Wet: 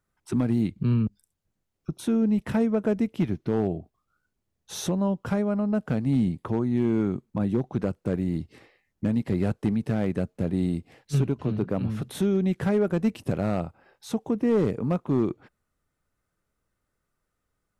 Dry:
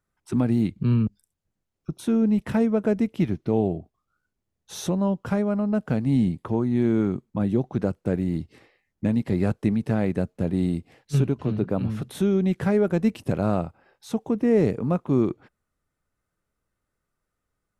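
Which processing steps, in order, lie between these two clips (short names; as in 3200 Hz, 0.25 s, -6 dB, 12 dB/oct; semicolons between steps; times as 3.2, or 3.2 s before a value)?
in parallel at -2.5 dB: compressor 6:1, threshold -31 dBFS, peak gain reduction 15 dB; on the sum: hard clip -12.5 dBFS, distortion -24 dB; gain -3.5 dB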